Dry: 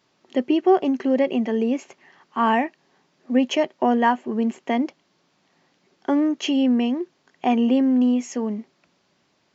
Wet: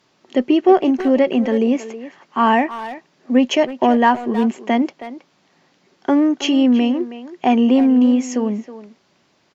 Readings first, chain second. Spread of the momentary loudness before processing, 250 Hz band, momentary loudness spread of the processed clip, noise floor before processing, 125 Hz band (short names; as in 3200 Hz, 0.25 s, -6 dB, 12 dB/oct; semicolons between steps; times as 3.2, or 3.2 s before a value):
11 LU, +5.0 dB, 15 LU, -67 dBFS, n/a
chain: added harmonics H 5 -34 dB, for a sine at -6.5 dBFS; speakerphone echo 0.32 s, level -12 dB; gain +4.5 dB